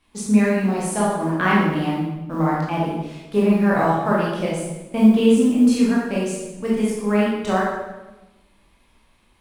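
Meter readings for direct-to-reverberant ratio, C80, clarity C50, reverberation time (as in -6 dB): -6.5 dB, 3.0 dB, 0.0 dB, 1.1 s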